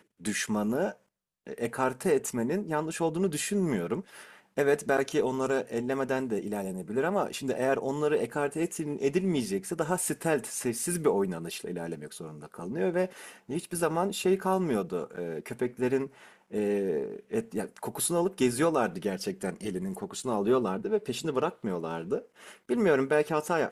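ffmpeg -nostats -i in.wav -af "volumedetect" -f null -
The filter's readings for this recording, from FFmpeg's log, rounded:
mean_volume: -29.8 dB
max_volume: -11.8 dB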